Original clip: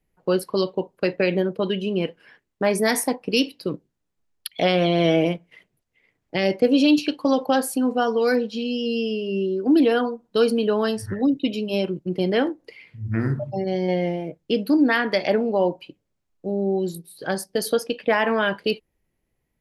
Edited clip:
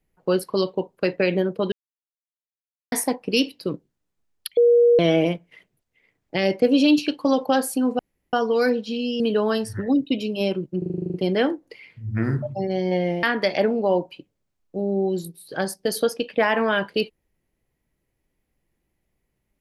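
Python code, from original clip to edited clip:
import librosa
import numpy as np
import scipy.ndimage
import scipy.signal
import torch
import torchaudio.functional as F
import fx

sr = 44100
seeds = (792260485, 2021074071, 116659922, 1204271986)

y = fx.edit(x, sr, fx.silence(start_s=1.72, length_s=1.2),
    fx.bleep(start_s=4.57, length_s=0.42, hz=476.0, db=-11.5),
    fx.insert_room_tone(at_s=7.99, length_s=0.34),
    fx.cut(start_s=8.86, length_s=1.67),
    fx.stutter(start_s=12.11, slice_s=0.04, count=10),
    fx.cut(start_s=14.2, length_s=0.73), tone=tone)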